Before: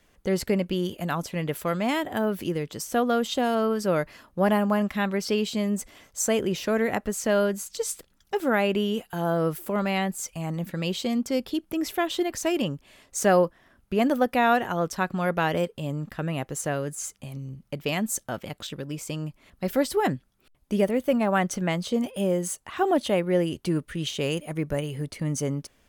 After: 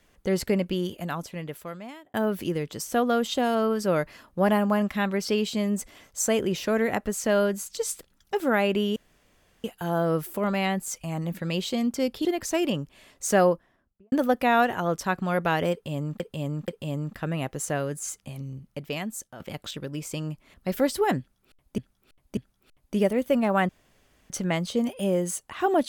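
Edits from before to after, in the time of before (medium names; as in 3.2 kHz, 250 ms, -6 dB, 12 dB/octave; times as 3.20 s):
0.64–2.14 s: fade out
8.96 s: insert room tone 0.68 s
11.57–12.17 s: delete
13.25–14.04 s: studio fade out
15.64–16.12 s: loop, 3 plays
17.44–18.36 s: fade out, to -13 dB
20.15–20.74 s: loop, 3 plays
21.47 s: insert room tone 0.61 s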